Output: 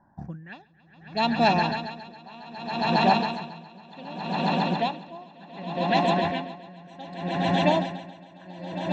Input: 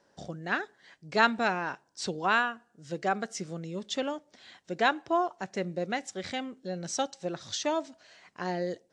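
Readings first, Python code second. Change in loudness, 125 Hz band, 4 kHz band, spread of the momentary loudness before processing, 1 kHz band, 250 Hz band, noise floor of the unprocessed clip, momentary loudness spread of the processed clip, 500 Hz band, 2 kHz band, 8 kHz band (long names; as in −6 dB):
+6.0 dB, +10.5 dB, +5.0 dB, 12 LU, +5.5 dB, +7.5 dB, −68 dBFS, 22 LU, +4.0 dB, −1.0 dB, below −10 dB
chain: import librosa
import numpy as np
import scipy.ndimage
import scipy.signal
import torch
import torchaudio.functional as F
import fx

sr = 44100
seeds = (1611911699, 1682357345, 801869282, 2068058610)

y = fx.env_phaser(x, sr, low_hz=490.0, high_hz=1600.0, full_db=-26.0)
y = y + 0.55 * np.pad(y, (int(1.2 * sr / 1000.0), 0))[:len(y)]
y = fx.rider(y, sr, range_db=5, speed_s=2.0)
y = fx.env_lowpass(y, sr, base_hz=740.0, full_db=-26.0)
y = fx.echo_swell(y, sr, ms=137, loudest=8, wet_db=-9)
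y = y * 10.0 ** (-26 * (0.5 - 0.5 * np.cos(2.0 * np.pi * 0.66 * np.arange(len(y)) / sr)) / 20.0)
y = y * 10.0 ** (9.0 / 20.0)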